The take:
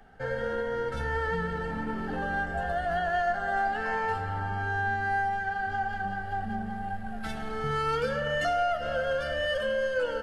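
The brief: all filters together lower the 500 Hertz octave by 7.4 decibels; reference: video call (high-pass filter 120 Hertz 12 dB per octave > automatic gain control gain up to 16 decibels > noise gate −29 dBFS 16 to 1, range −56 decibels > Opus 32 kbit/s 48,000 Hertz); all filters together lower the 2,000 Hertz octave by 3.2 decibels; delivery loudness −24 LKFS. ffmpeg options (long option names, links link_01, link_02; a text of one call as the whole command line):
ffmpeg -i in.wav -af "highpass=120,equalizer=frequency=500:width_type=o:gain=-9,equalizer=frequency=2000:width_type=o:gain=-3.5,dynaudnorm=maxgain=16dB,agate=range=-56dB:threshold=-29dB:ratio=16,volume=13dB" -ar 48000 -c:a libopus -b:a 32k out.opus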